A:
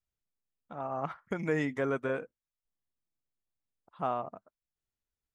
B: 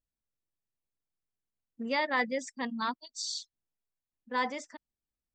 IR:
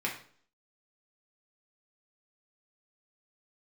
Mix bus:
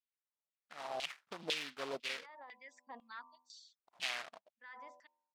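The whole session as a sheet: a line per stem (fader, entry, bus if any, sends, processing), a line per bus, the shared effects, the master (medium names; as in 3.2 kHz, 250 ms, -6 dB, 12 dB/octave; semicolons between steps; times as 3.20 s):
+2.0 dB, 0.00 s, no send, delay time shaken by noise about 3.7 kHz, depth 0.23 ms
-4.0 dB, 0.30 s, no send, treble shelf 5.4 kHz +6 dB; de-hum 83.66 Hz, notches 14; peak limiter -27 dBFS, peak gain reduction 10.5 dB; auto duck -8 dB, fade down 0.70 s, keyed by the first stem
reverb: none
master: LFO band-pass saw down 2 Hz 650–3000 Hz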